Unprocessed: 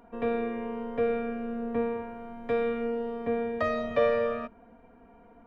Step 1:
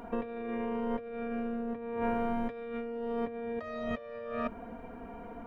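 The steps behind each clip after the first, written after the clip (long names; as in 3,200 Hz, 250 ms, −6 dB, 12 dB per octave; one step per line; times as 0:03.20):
compressor whose output falls as the input rises −39 dBFS, ratio −1
level +2.5 dB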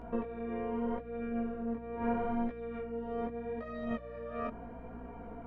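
chorus effect 0.79 Hz, delay 16.5 ms, depth 6.5 ms
high-shelf EQ 2,900 Hz −10.5 dB
mains hum 60 Hz, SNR 15 dB
level +1.5 dB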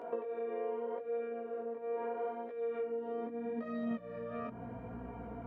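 downward compressor 4 to 1, threshold −40 dBFS, peak gain reduction 11 dB
high-pass filter sweep 460 Hz → 83 Hz, 0:02.61–0:05.07
level +1 dB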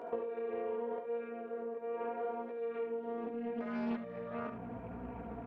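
single-tap delay 72 ms −7.5 dB
highs frequency-modulated by the lows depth 0.44 ms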